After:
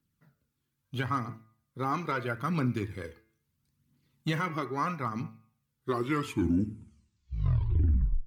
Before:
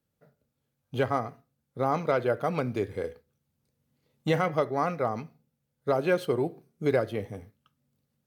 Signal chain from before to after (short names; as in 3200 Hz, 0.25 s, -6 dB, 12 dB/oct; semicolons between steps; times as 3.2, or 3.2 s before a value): tape stop at the end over 2.55 s; band shelf 580 Hz -12.5 dB 1.1 oct; de-hum 110.7 Hz, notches 25; phaser 0.76 Hz, delay 2.9 ms, feedback 40%; limiter -19 dBFS, peak gain reduction 9 dB